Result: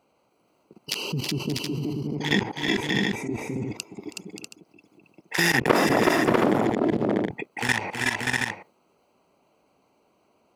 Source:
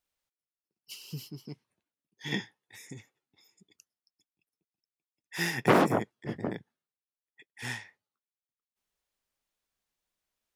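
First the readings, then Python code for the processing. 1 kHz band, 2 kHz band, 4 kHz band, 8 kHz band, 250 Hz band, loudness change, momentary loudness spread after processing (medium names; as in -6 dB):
+7.0 dB, +12.0 dB, +13.0 dB, +12.0 dB, +10.5 dB, +6.5 dB, 17 LU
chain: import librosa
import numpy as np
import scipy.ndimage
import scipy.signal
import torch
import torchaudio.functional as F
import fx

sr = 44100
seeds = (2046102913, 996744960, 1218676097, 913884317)

y = fx.wiener(x, sr, points=25)
y = scipy.signal.sosfilt(scipy.signal.butter(2, 180.0, 'highpass', fs=sr, output='sos'), y)
y = fx.level_steps(y, sr, step_db=19)
y = fx.echo_multitap(y, sr, ms=(322, 370, 373, 580, 644, 723), db=(-18.0, -9.0, -8.0, -12.0, -9.0, -14.5))
y = fx.env_flatten(y, sr, amount_pct=70)
y = y * librosa.db_to_amplitude(6.5)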